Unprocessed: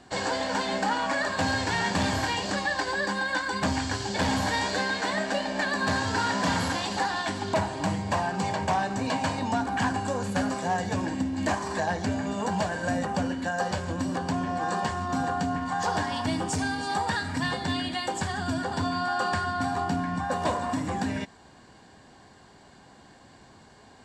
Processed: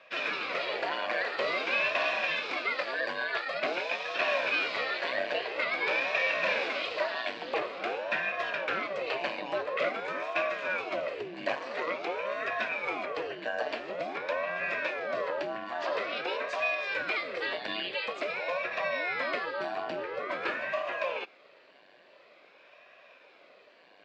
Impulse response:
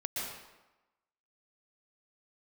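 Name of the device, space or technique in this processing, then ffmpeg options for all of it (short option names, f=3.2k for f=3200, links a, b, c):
voice changer toy: -af "aeval=exprs='val(0)*sin(2*PI*470*n/s+470*0.9/0.48*sin(2*PI*0.48*n/s))':c=same,highpass=480,equalizer=f=580:t=q:w=4:g=7,equalizer=f=860:t=q:w=4:g=-9,equalizer=f=1.3k:t=q:w=4:g=-4,equalizer=f=2.5k:t=q:w=4:g=9,lowpass=f=4.1k:w=0.5412,lowpass=f=4.1k:w=1.3066"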